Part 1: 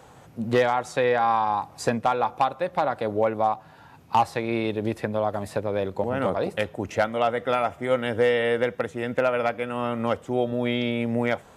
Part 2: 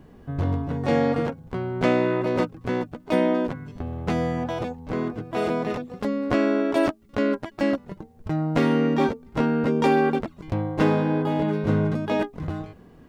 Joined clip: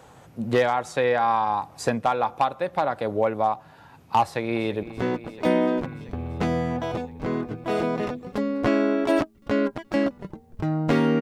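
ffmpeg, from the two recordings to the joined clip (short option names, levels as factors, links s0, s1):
-filter_complex "[0:a]apad=whole_dur=11.21,atrim=end=11.21,atrim=end=4.832[s0];[1:a]atrim=start=2.498:end=8.88[s1];[s0][s1]acrossfade=d=0.004:c1=hsin:c2=hsin,asplit=2[s2][s3];[s3]afade=t=in:st=4.22:d=0.01,afade=t=out:st=4.83:d=0.01,aecho=0:1:340|680|1020|1360|1700|2040|2380|2720|3060|3400|3740|4080:0.177828|0.142262|0.11381|0.0910479|0.0728383|0.0582707|0.0466165|0.0372932|0.0298346|0.0238677|0.0190941|0.0152753[s4];[s2][s4]amix=inputs=2:normalize=0"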